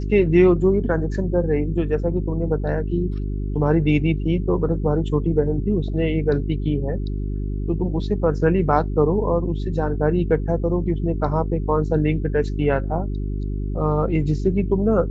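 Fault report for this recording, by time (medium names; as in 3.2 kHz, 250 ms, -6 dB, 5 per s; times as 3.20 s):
hum 50 Hz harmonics 8 -25 dBFS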